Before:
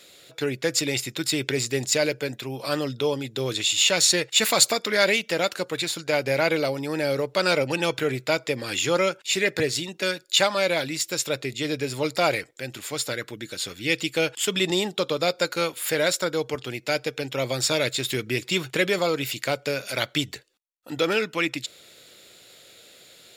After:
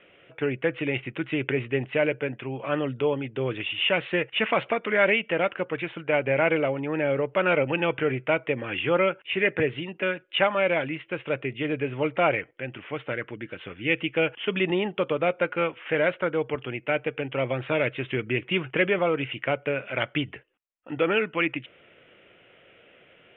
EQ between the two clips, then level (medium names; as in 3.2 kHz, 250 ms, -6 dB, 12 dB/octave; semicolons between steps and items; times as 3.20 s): steep low-pass 3.1 kHz 96 dB/octave; 0.0 dB